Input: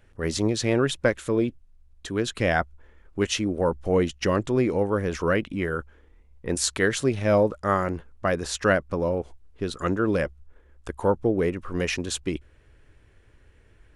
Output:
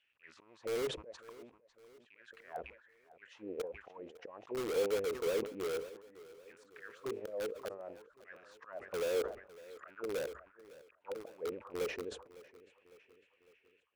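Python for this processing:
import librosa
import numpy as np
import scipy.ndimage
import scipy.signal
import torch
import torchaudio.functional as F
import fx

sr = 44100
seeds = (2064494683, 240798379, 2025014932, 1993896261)

p1 = fx.rattle_buzz(x, sr, strikes_db=-36.0, level_db=-27.0)
p2 = fx.hum_notches(p1, sr, base_hz=50, count=10, at=(6.91, 7.51))
p3 = fx.leveller(p2, sr, passes=1, at=(8.83, 9.79))
p4 = fx.auto_swell(p3, sr, attack_ms=506.0)
p5 = fx.auto_wah(p4, sr, base_hz=460.0, top_hz=3000.0, q=6.6, full_db=-29.0, direction='down')
p6 = (np.mod(10.0 ** (31.5 / 20.0) * p5 + 1.0, 2.0) - 1.0) / 10.0 ** (31.5 / 20.0)
p7 = p5 + F.gain(torch.from_numpy(p6), -5.0).numpy()
p8 = fx.echo_feedback(p7, sr, ms=555, feedback_pct=52, wet_db=-19)
p9 = fx.sustainer(p8, sr, db_per_s=110.0)
y = F.gain(torch.from_numpy(p9), -3.5).numpy()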